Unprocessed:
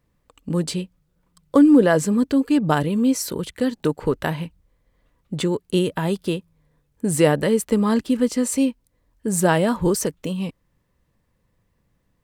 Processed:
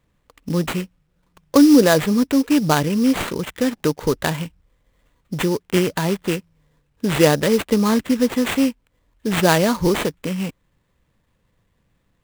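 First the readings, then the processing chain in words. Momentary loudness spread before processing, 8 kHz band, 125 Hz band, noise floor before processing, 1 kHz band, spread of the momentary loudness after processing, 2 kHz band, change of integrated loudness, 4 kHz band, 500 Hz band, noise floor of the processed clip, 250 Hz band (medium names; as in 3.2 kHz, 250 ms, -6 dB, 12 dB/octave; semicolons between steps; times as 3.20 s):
12 LU, -0.5 dB, +1.5 dB, -69 dBFS, +2.5 dB, 12 LU, +4.5 dB, +2.0 dB, +6.0 dB, +1.5 dB, -68 dBFS, +1.5 dB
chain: peaking EQ 2.7 kHz +4 dB 1.9 oct; sample-rate reducer 5.4 kHz, jitter 20%; trim +1.5 dB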